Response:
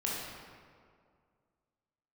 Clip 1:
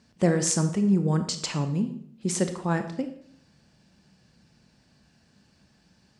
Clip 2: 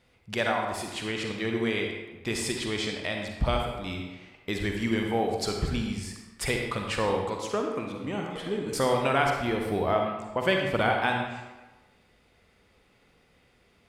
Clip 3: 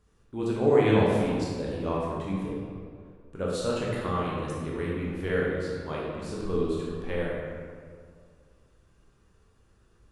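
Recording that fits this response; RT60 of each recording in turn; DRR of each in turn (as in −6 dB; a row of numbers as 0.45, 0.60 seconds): 3; 0.65, 1.2, 2.1 seconds; 8.0, 1.5, −5.5 decibels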